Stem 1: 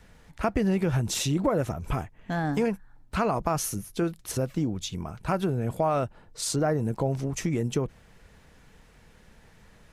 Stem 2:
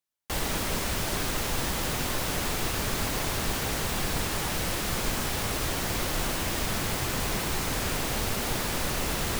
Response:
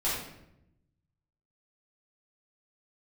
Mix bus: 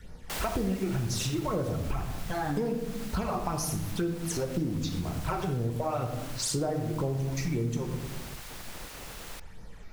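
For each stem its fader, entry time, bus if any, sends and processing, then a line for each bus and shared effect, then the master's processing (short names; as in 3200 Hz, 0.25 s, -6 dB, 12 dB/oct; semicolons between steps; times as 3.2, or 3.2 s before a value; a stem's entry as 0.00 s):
+2.0 dB, 0.00 s, send -9.5 dB, phaser stages 12, 2 Hz, lowest notch 160–3000 Hz
-1.0 dB, 0.00 s, no send, spectral gate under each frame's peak -10 dB weak; auto duck -12 dB, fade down 1.95 s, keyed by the first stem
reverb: on, RT60 0.80 s, pre-delay 5 ms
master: compressor 4:1, threshold -28 dBFS, peak gain reduction 12 dB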